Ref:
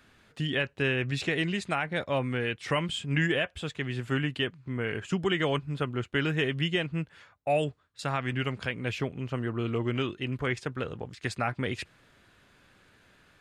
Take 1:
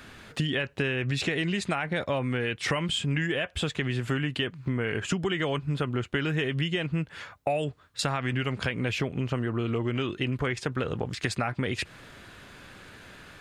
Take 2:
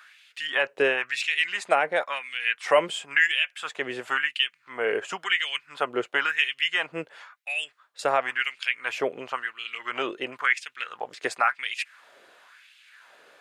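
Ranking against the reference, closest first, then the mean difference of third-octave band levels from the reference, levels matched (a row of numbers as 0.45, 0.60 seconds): 1, 2; 4.0, 9.5 decibels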